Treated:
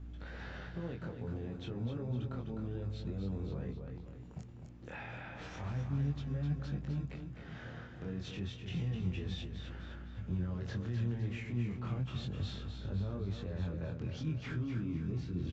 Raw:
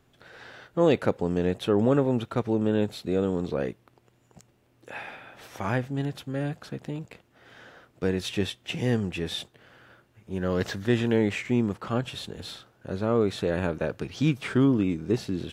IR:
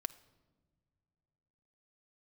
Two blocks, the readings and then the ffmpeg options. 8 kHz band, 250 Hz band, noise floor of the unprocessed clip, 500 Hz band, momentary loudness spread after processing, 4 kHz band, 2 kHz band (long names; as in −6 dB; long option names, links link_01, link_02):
below −15 dB, −13.5 dB, −64 dBFS, −20.0 dB, 11 LU, −13.5 dB, −13.0 dB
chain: -filter_complex "[0:a]acrossover=split=140|4400[link_01][link_02][link_03];[link_01]acrusher=samples=36:mix=1:aa=0.000001[link_04];[link_04][link_02][link_03]amix=inputs=3:normalize=0,aresample=16000,aresample=44100,acompressor=threshold=-44dB:ratio=2.5,equalizer=frequency=110:width=1.5:gain=7,alimiter=level_in=11dB:limit=-24dB:level=0:latency=1:release=26,volume=-11dB,asplit=2[link_05][link_06];[link_06]aecho=0:1:255|510|765|1020|1275:0.447|0.201|0.0905|0.0407|0.0183[link_07];[link_05][link_07]amix=inputs=2:normalize=0,aeval=exprs='val(0)+0.00251*(sin(2*PI*60*n/s)+sin(2*PI*2*60*n/s)/2+sin(2*PI*3*60*n/s)/3+sin(2*PI*4*60*n/s)/4+sin(2*PI*5*60*n/s)/5)':channel_layout=same,bass=frequency=250:gain=9,treble=frequency=4000:gain=-5,flanger=delay=20:depth=5.7:speed=0.31,volume=1.5dB"